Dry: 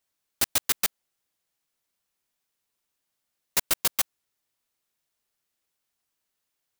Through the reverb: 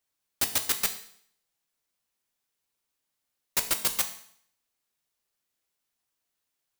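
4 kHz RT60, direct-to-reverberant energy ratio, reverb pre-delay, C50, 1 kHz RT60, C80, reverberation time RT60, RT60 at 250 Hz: 0.60 s, 6.5 dB, 4 ms, 12.0 dB, 0.65 s, 14.5 dB, 0.60 s, 0.60 s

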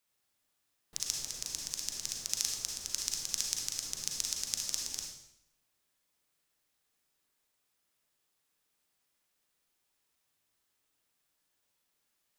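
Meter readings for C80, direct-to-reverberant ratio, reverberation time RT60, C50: 5.5 dB, 0.5 dB, 0.75 s, 2.0 dB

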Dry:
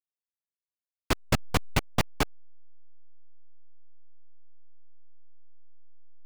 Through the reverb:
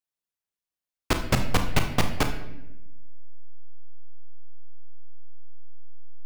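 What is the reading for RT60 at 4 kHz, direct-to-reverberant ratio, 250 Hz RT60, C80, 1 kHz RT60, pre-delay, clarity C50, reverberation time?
0.70 s, 5.5 dB, 1.4 s, 11.0 dB, 0.75 s, 31 ms, 8.5 dB, 0.90 s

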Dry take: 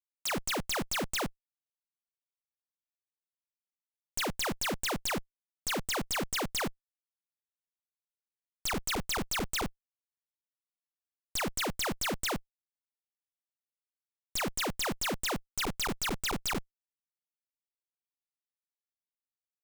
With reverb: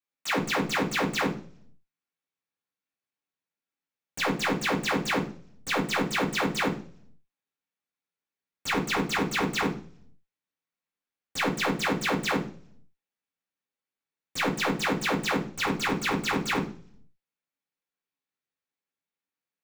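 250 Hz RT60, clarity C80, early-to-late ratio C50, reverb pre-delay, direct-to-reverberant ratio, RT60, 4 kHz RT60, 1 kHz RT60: 0.70 s, 16.0 dB, 11.0 dB, 3 ms, -9.5 dB, 0.45 s, 0.50 s, 0.40 s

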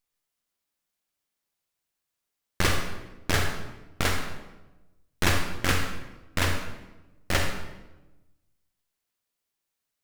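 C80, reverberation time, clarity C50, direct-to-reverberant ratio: 6.5 dB, 1.1 s, 4.5 dB, 3.0 dB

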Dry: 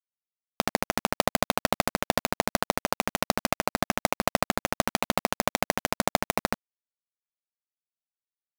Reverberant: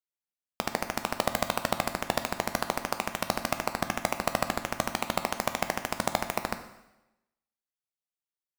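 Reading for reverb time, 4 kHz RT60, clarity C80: 1.0 s, 0.90 s, 13.0 dB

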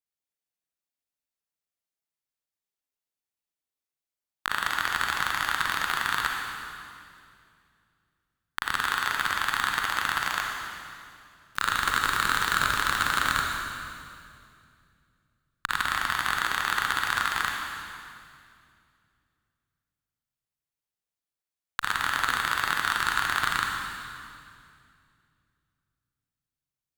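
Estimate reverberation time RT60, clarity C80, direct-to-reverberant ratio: 2.4 s, 2.5 dB, 0.0 dB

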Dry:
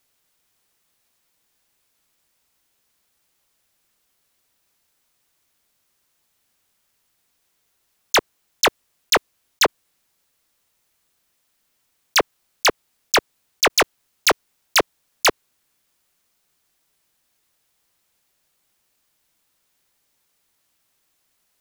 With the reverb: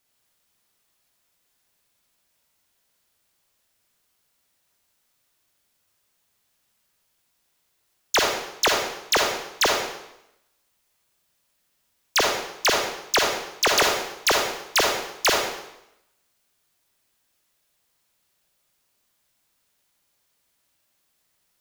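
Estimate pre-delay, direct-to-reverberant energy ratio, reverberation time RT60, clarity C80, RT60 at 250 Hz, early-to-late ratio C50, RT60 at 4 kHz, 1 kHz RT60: 31 ms, -0.5 dB, 0.85 s, 4.5 dB, 0.85 s, 1.5 dB, 0.80 s, 0.85 s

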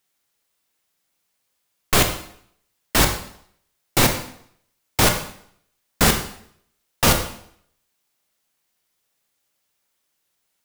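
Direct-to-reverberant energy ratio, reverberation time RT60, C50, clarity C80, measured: 5.0 dB, 0.65 s, 8.5 dB, 11.0 dB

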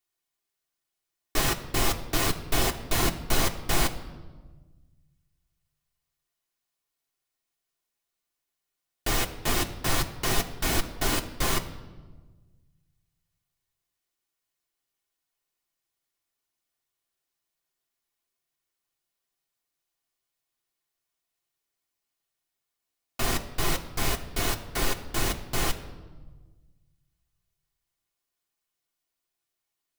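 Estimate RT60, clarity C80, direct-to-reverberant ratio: 1.4 s, 14.5 dB, 2.0 dB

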